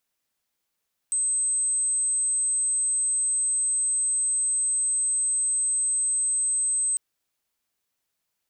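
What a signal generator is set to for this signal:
tone sine 8,220 Hz −21.5 dBFS 5.85 s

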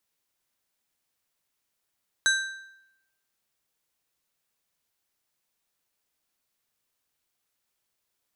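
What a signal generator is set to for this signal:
struck metal plate, lowest mode 1,570 Hz, decay 0.85 s, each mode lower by 4 dB, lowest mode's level −18.5 dB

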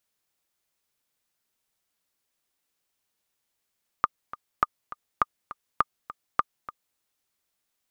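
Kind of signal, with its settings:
click track 204 BPM, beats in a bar 2, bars 5, 1,210 Hz, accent 16.5 dB −6.5 dBFS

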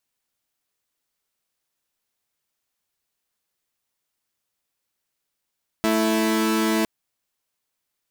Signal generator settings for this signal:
held notes A3/E4 saw, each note −19 dBFS 1.01 s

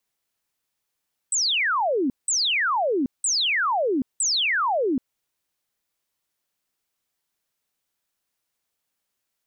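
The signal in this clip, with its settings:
repeated falling chirps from 8,400 Hz, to 240 Hz, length 0.78 s sine, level −19.5 dB, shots 4, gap 0.18 s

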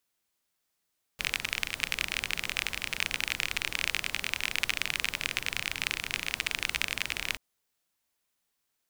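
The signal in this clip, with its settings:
rain-like ticks over hiss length 6.18 s, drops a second 31, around 2,400 Hz, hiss −11 dB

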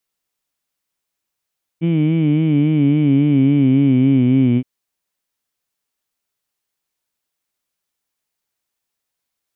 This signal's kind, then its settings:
vowel by formant synthesis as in heed, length 2.82 s, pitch 162 Hz, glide −4.5 semitones, vibrato 3.6 Hz, vibrato depth 0.85 semitones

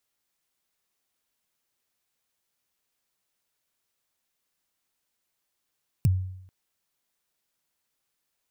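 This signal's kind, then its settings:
synth kick length 0.44 s, from 160 Hz, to 93 Hz, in 26 ms, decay 0.75 s, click on, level −15 dB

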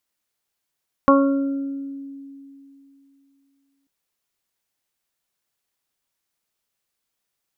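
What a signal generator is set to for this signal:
harmonic partials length 2.79 s, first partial 276 Hz, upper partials −0.5/−10/2.5/−11 dB, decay 2.98 s, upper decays 1.08/0.28/0.43/0.91 s, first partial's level −13 dB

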